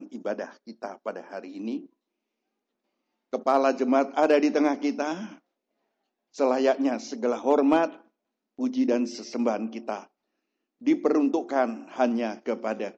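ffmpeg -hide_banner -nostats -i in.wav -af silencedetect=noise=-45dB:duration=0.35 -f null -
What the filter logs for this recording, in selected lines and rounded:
silence_start: 1.86
silence_end: 3.33 | silence_duration: 1.47
silence_start: 5.36
silence_end: 6.35 | silence_duration: 0.98
silence_start: 8.01
silence_end: 8.59 | silence_duration: 0.58
silence_start: 10.05
silence_end: 10.81 | silence_duration: 0.77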